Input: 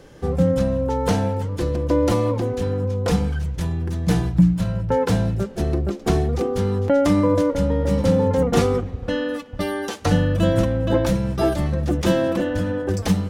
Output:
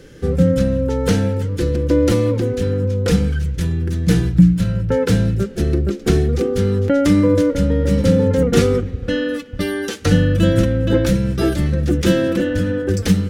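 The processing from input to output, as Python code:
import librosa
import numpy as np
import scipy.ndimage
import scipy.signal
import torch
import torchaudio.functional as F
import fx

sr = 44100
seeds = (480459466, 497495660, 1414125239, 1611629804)

y = fx.band_shelf(x, sr, hz=830.0, db=-11.5, octaves=1.1)
y = F.gain(torch.from_numpy(y), 4.5).numpy()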